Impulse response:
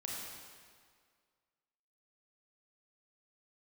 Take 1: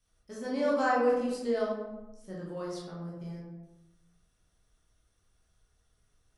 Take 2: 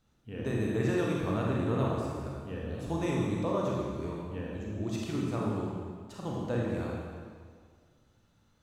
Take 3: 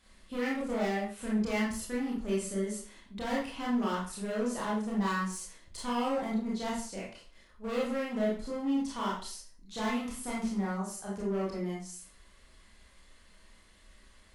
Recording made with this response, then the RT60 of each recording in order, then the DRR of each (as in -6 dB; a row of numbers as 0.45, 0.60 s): 2; 1.0, 1.9, 0.45 s; -6.0, -3.5, -5.5 dB